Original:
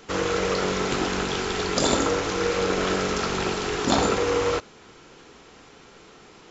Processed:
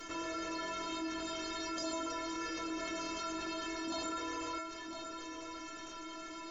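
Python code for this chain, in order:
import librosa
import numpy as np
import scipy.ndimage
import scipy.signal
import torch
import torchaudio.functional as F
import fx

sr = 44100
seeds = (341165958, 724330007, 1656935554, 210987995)

p1 = fx.stiff_resonator(x, sr, f0_hz=320.0, decay_s=0.38, stiffness=0.008)
p2 = p1 + fx.echo_single(p1, sr, ms=1007, db=-22.0, dry=0)
p3 = fx.env_flatten(p2, sr, amount_pct=70)
y = p3 * librosa.db_to_amplitude(-3.5)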